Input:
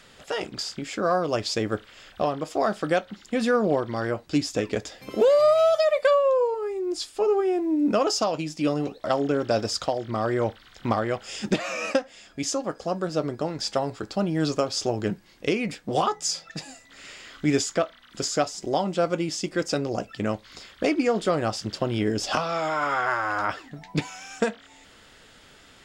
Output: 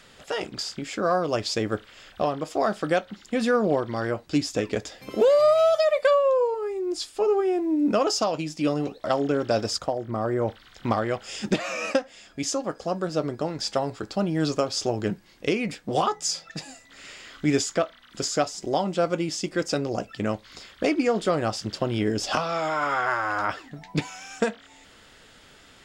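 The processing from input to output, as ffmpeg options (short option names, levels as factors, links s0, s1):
-filter_complex "[0:a]asettb=1/sr,asplit=3[s0][s1][s2];[s0]atrim=end=9.784[s3];[s1]atrim=start=9.78:end=10.48,asetpts=PTS-STARTPTS,afade=t=in:d=0.004:c=qsin,afade=t=out:st=0.696:d=0.004:c=qsin,equalizer=f=3800:w=0.64:g=-12[s4];[s2]atrim=start=10.476[s5];[s3][s4]acrossfade=d=0.004:c1=hsin:c2=qsin[s6];[s6][s5]acrossfade=d=0.004:c1=qsin:c2=hsin"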